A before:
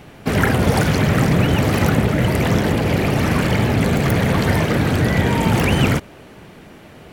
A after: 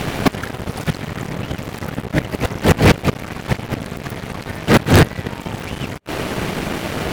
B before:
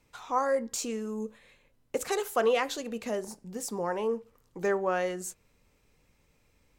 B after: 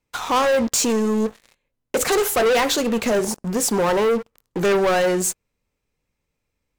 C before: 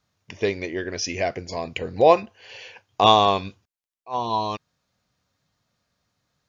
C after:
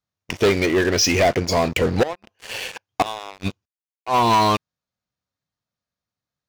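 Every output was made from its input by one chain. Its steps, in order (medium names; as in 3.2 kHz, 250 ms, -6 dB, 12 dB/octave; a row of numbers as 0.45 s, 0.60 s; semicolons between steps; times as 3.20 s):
inverted gate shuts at -8 dBFS, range -28 dB; waveshaping leveller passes 5; normalise loudness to -20 LUFS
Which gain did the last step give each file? +1.5 dB, 0.0 dB, -5.0 dB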